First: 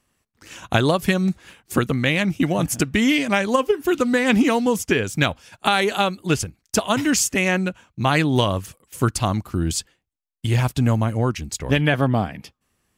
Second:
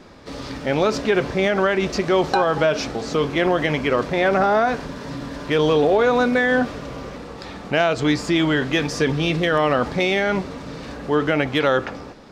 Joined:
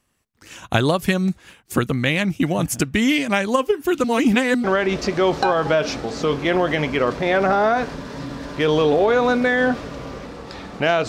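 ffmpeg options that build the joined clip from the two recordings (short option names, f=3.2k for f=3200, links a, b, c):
-filter_complex "[0:a]apad=whole_dur=11.08,atrim=end=11.08,asplit=2[a][b];[a]atrim=end=4.042[c];[b]atrim=start=4.038:end=4.642,asetpts=PTS-STARTPTS,areverse[d];[1:a]atrim=start=1.548:end=7.99[e];[c][d]acrossfade=d=0.004:c1=hsin:c2=hsin[f];[f][e]acrossfade=d=0.004:c1=hsin:c2=hsin"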